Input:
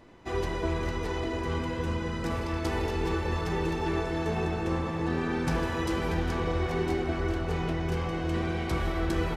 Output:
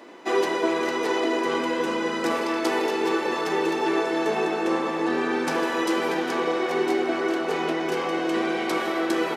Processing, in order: vocal rider within 3 dB 0.5 s; HPF 270 Hz 24 dB/oct; gain +8 dB

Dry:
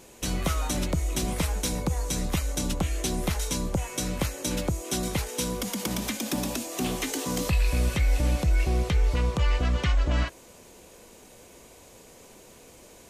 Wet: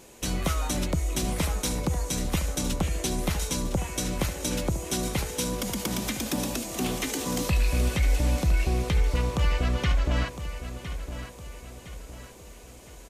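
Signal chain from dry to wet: feedback echo 1.01 s, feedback 43%, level -11 dB

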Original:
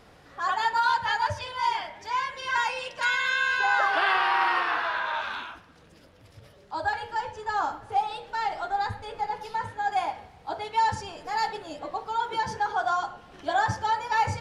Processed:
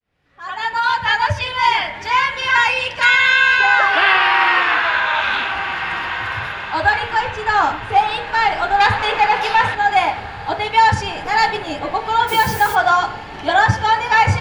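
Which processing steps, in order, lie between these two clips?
opening faded in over 1.97 s; low shelf 320 Hz +9.5 dB; diffused feedback echo 1.551 s, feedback 53%, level -14.5 dB; 8.8–9.75 overdrive pedal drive 13 dB, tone 5900 Hz, clips at -16 dBFS; bell 2400 Hz +10.5 dB 1.4 oct; AGC gain up to 9.5 dB; 12.27–12.74 added noise blue -31 dBFS; ending taper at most 330 dB/s

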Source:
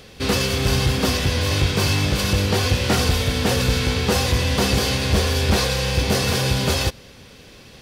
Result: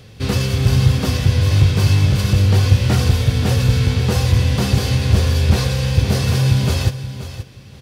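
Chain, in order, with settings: bell 110 Hz +14.5 dB 1.2 oct; on a send: feedback echo 0.527 s, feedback 15%, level -12.5 dB; on the sum: gain -3.5 dB

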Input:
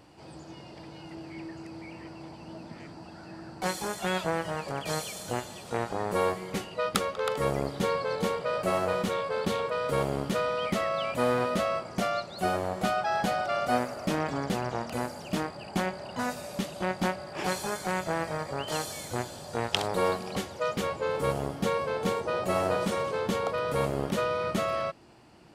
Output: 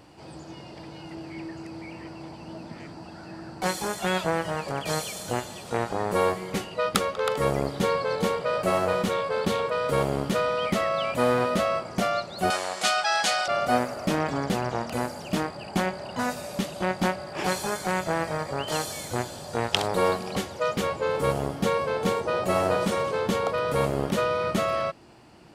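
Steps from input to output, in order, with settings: 12.5–13.48 weighting filter ITU-R 468; gain +3.5 dB

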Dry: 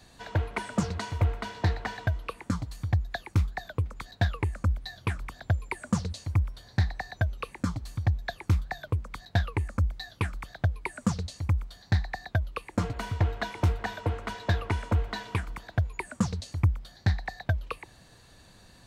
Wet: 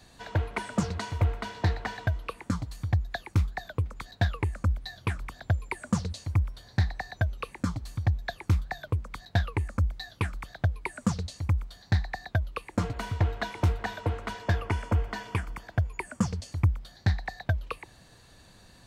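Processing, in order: 14.38–16.52 notch 3900 Hz, Q 5.4

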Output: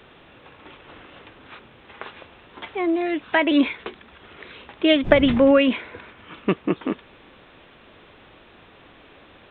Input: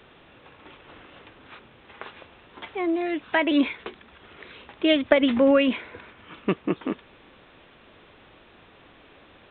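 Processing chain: 5.03–5.58 wind noise 180 Hz -29 dBFS; gain +3 dB

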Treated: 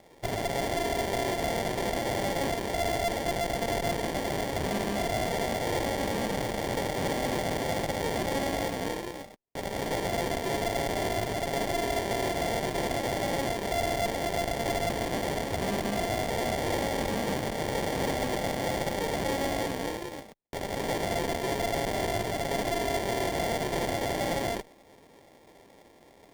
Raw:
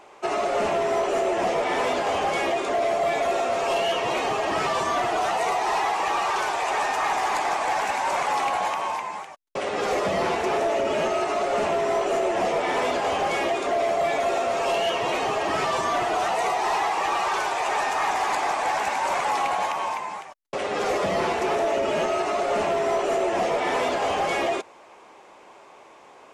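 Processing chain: tone controls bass -6 dB, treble +6 dB; sample-and-hold 32×; added harmonics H 6 -15 dB, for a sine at -12 dBFS; running maximum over 3 samples; gain -6.5 dB

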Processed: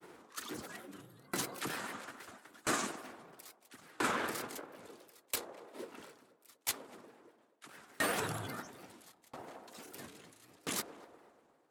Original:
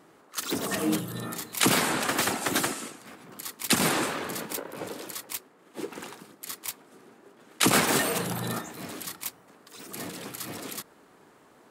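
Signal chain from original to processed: dynamic EQ 1500 Hz, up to +7 dB, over -44 dBFS, Q 1.9; reverse; compressor 16:1, threshold -31 dBFS, peak gain reduction 17 dB; reverse; flange 1.8 Hz, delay 2.2 ms, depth 1.4 ms, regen -63%; grains 0.1 s, spray 21 ms, pitch spread up and down by 3 st; on a send: narrowing echo 0.242 s, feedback 83%, band-pass 650 Hz, level -10 dB; on the sum: dB-ramp tremolo decaying 0.75 Hz, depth 30 dB; gain +9 dB

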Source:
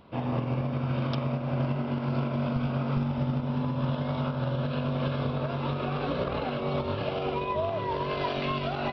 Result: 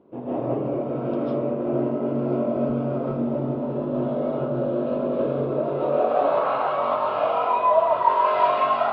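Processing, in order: digital reverb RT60 0.45 s, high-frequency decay 0.55×, pre-delay 0.11 s, DRR -9.5 dB; band-pass sweep 370 Hz -> 990 Hz, 5.67–6.46; gain +6 dB

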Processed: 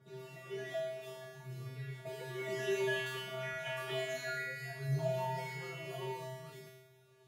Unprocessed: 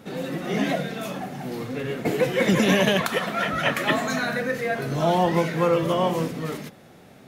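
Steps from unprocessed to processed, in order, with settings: 3.91–6.13 comb 7.3 ms, depth 92%; phaser 0.6 Hz, delay 3.3 ms, feedback 54%; resonator 130 Hz, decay 1 s, harmonics odd, mix 100%; gain +2 dB

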